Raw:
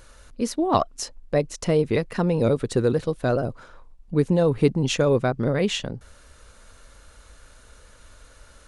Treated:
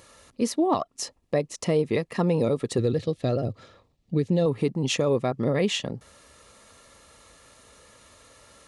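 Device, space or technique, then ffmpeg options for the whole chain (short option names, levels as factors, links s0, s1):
PA system with an anti-feedback notch: -filter_complex "[0:a]highpass=120,asuperstop=centerf=1500:order=8:qfactor=7.1,alimiter=limit=0.188:level=0:latency=1:release=380,asettb=1/sr,asplit=3[s0][s1][s2];[s0]atrim=end=2.784[s3];[s1]atrim=start=2.78:end=4.46,asetpts=PTS-STARTPTS,afade=t=in:d=0.004:c=qsin,afade=t=out:st=1.676:d=0.004:c=qsin,equalizer=f=100:t=o:w=0.67:g=9,equalizer=f=1000:t=o:w=0.67:g=-10,equalizer=f=4000:t=o:w=0.67:g=4,equalizer=f=10000:t=o:w=0.67:g=-8[s4];[s2]atrim=start=4.456[s5];[s3][s4]acrossfade=d=0.004:c1=hsin:c2=qsin[s6];[s6][s5]acrossfade=d=0.004:c1=qsin:c2=hsin,volume=1.12"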